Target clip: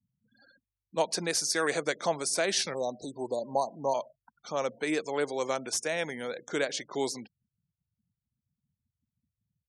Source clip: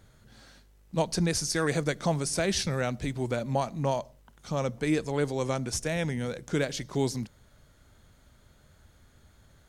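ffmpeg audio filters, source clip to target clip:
-filter_complex "[0:a]asplit=3[s0][s1][s2];[s0]afade=t=out:st=2.73:d=0.02[s3];[s1]asuperstop=centerf=2000:order=20:qfactor=0.77,afade=t=in:st=2.73:d=0.02,afade=t=out:st=3.93:d=0.02[s4];[s2]afade=t=in:st=3.93:d=0.02[s5];[s3][s4][s5]amix=inputs=3:normalize=0,afftfilt=real='re*gte(hypot(re,im),0.00501)':imag='im*gte(hypot(re,im),0.00501)':win_size=1024:overlap=0.75,highpass=410,volume=1.19"

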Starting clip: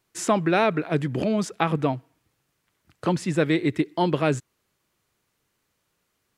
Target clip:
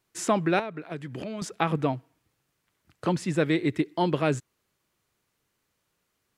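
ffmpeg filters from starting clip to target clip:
-filter_complex "[0:a]asettb=1/sr,asplit=3[s0][s1][s2];[s0]atrim=end=0.594[s3];[s1]atrim=start=0.59:end=1.42,asetpts=PTS-STARTPTS,afade=t=in:d=0.004:c=qsin,afade=t=out:st=0.826:d=0.004:c=qsin,acrossover=split=1100|2500[s4][s5][s6];[s4]acompressor=threshold=0.0251:ratio=4[s7];[s5]acompressor=threshold=0.00708:ratio=4[s8];[s6]acompressor=threshold=0.00316:ratio=4[s9];[s7][s8][s9]amix=inputs=3:normalize=0[s10];[s2]atrim=start=1.416[s11];[s3][s10]acrossfade=d=0.004:c1=hsin:c2=qsin[s12];[s12][s11]acrossfade=d=0.004:c1=qsin:c2=hsin,volume=0.75"

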